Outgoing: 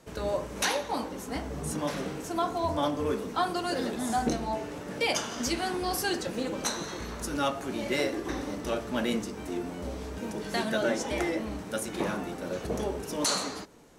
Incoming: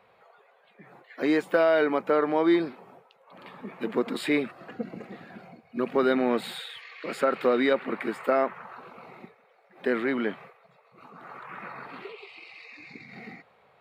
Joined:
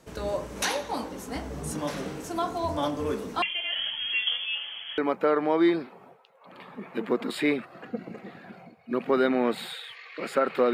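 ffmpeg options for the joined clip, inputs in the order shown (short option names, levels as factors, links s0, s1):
-filter_complex "[0:a]asettb=1/sr,asplit=3[s0][s1][s2];[s0]atrim=end=3.424[s3];[s1]atrim=start=3.42:end=4.98,asetpts=PTS-STARTPTS,afade=t=in:d=0.004:c=qsin,afade=t=out:st=1.556:d=0.004:c=qsin,lowpass=f=3000:t=q:w=0.5098,lowpass=f=3000:t=q:w=0.6013,lowpass=f=3000:t=q:w=0.9,lowpass=f=3000:t=q:w=2.563,afreqshift=-3500[s4];[s2]atrim=start=4.976[s5];[s3][s4]acrossfade=d=0.004:c1=hsin:c2=qsin[s6];[s6][s5]acrossfade=d=0.004:c1=qsin:c2=hsin,apad=whole_dur=10.73,atrim=end=10.73,atrim=end=4.982[s7];[1:a]atrim=start=1.838:end=7.59[s8];[s7][s8]acrossfade=d=0.004:c1=hsin:c2=hsin"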